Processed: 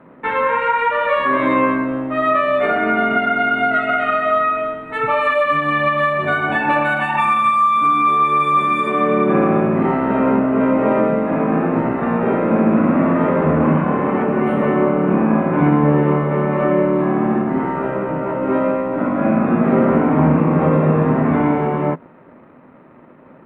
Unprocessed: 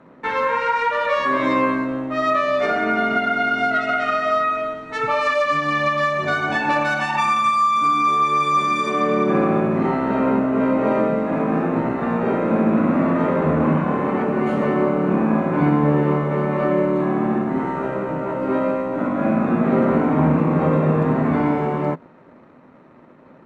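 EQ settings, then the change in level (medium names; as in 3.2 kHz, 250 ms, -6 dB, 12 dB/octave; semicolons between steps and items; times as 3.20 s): Butterworth band-stop 5.5 kHz, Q 0.92; +3.0 dB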